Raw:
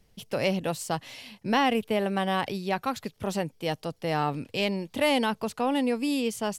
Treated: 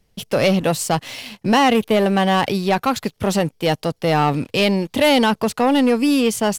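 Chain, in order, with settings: sample leveller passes 2; gain +4.5 dB

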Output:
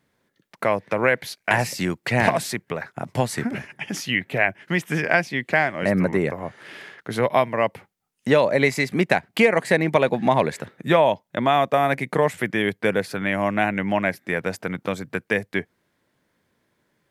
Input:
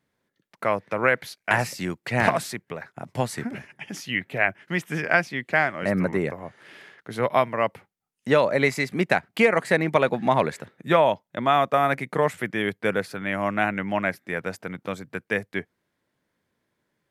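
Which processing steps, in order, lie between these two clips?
dynamic EQ 1300 Hz, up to -7 dB, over -40 dBFS, Q 3.7; in parallel at +1 dB: compressor, threshold -28 dBFS, peak gain reduction 14 dB

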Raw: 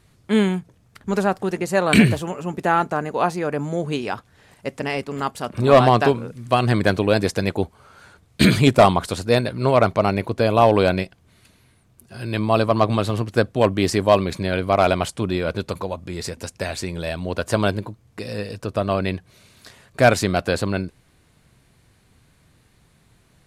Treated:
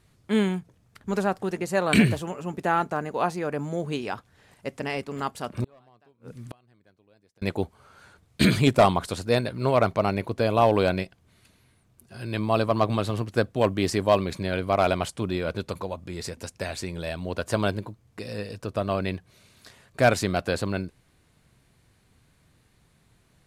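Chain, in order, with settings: 5.64–7.42 flipped gate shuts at -17 dBFS, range -38 dB; short-mantissa float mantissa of 6-bit; gain -5 dB

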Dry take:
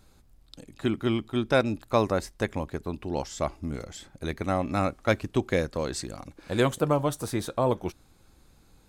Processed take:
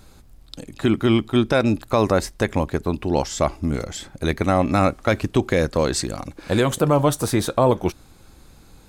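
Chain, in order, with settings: maximiser +16 dB; gain -6 dB

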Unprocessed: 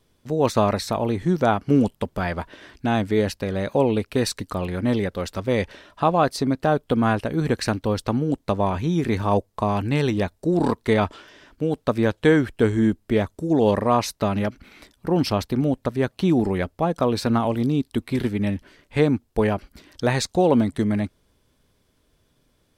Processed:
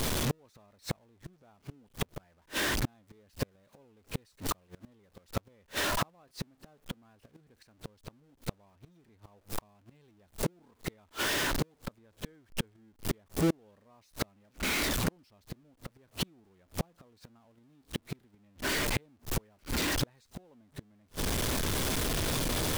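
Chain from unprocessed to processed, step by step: zero-crossing step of -20.5 dBFS; flipped gate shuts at -15 dBFS, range -40 dB; gain -4 dB

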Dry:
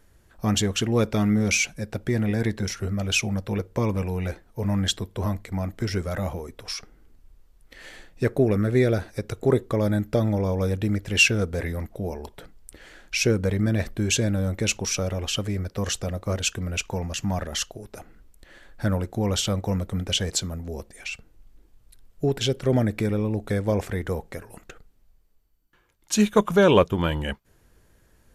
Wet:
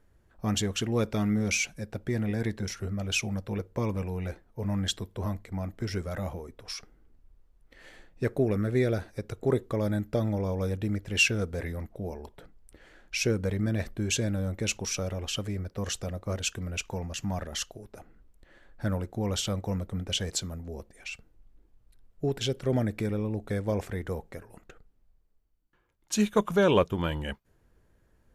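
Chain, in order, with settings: mismatched tape noise reduction decoder only; gain -5.5 dB

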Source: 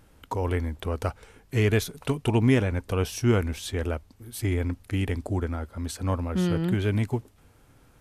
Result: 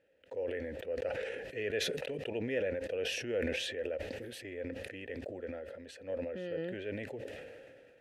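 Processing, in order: vowel filter e; sustainer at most 27 dB/s

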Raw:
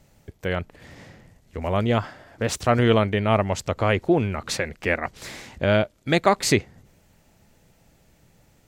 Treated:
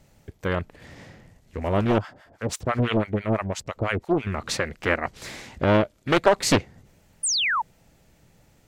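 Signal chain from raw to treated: 1.98–4.27 harmonic tremolo 6 Hz, depth 100%, crossover 790 Hz; 7.23–7.62 painted sound fall 830–10000 Hz -23 dBFS; Doppler distortion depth 0.89 ms

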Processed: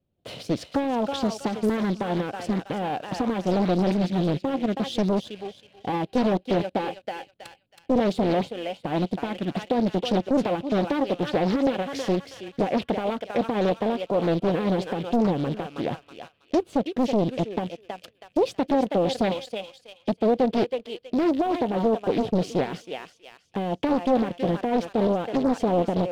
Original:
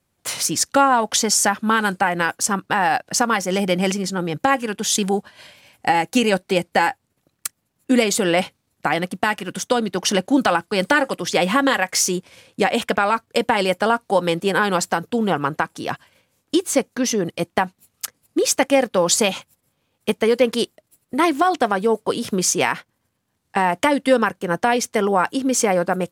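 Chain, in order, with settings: rattling part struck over -34 dBFS, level -23 dBFS; air absorption 440 m; on a send: thinning echo 0.322 s, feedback 42%, high-pass 940 Hz, level -6.5 dB; on the sum: sample leveller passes 1; limiter -12.5 dBFS, peak gain reduction 7.5 dB; band shelf 1400 Hz -13 dB; Doppler distortion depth 0.88 ms; gain -1 dB

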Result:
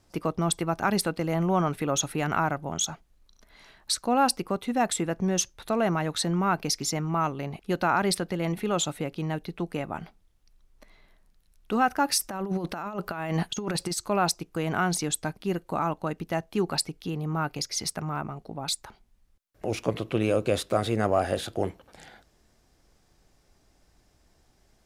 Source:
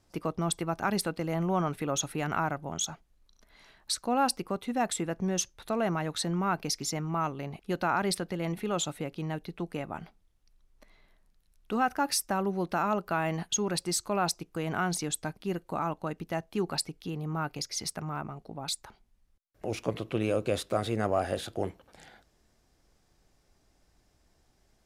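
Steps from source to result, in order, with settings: 12.18–13.98 negative-ratio compressor -33 dBFS, ratio -0.5; gain +4 dB

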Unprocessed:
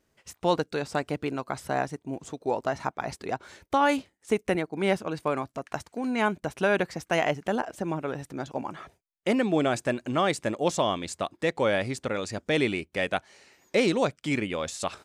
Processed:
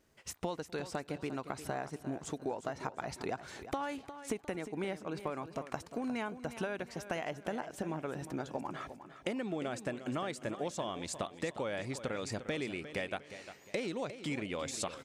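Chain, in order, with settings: compressor 10:1, threshold -35 dBFS, peak gain reduction 18 dB; outdoor echo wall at 43 m, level -25 dB; warbling echo 0.354 s, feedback 35%, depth 67 cents, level -12 dB; gain +1 dB

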